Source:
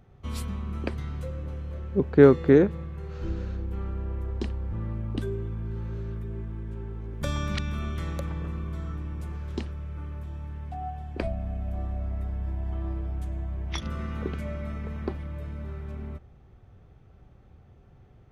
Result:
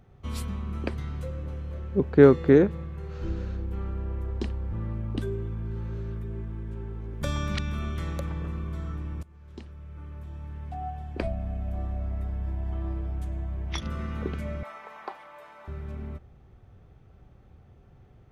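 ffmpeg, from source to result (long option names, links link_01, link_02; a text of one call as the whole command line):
ffmpeg -i in.wav -filter_complex "[0:a]asettb=1/sr,asplit=3[link_01][link_02][link_03];[link_01]atrim=end=14.634[link_04];[link_02]atrim=start=14.63:end=15.68,asetpts=PTS-STARTPTS,afade=type=in:duration=0.004:curve=qsin,afade=type=out:start_time=1.046:duration=0.004:curve=qsin,highpass=frequency=850:width_type=q:width=2.6[link_05];[link_03]atrim=start=15.676[link_06];[link_04][link_05]acrossfade=duration=0.004:curve1=hsin:curve2=qsin[link_07];[link_07][link_06]acrossfade=duration=0.004:curve1=qsin:curve2=hsin,asplit=2[link_08][link_09];[link_08]atrim=end=9.23,asetpts=PTS-STARTPTS,afade=type=out:start_time=9.226:duration=0.004:curve=hsin:silence=0.0841395[link_10];[link_09]atrim=start=9.23,asetpts=PTS-STARTPTS,afade=type=in:duration=1.54:silence=0.0841395[link_11];[link_10][link_11]concat=n=2:v=0:a=1" out.wav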